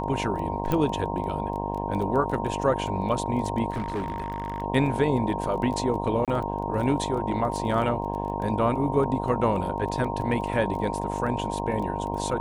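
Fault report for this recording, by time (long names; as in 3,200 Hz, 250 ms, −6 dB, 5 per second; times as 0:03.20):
mains buzz 50 Hz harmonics 21 −31 dBFS
surface crackle 15 per second −32 dBFS
whistle 930 Hz −32 dBFS
0:00.72: click −13 dBFS
0:03.70–0:04.62: clipping −25 dBFS
0:06.25–0:06.28: drop-out 27 ms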